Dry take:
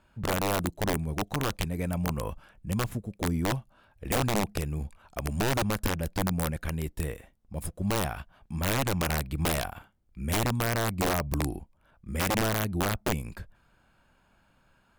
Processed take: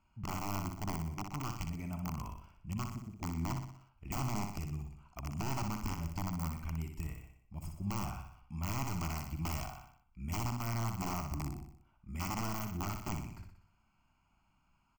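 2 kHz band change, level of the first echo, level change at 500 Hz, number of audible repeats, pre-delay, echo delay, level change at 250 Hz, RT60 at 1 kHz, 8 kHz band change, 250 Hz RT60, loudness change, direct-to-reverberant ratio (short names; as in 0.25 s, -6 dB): -14.0 dB, -6.0 dB, -17.0 dB, 6, none, 61 ms, -9.0 dB, none, -11.0 dB, none, -9.5 dB, none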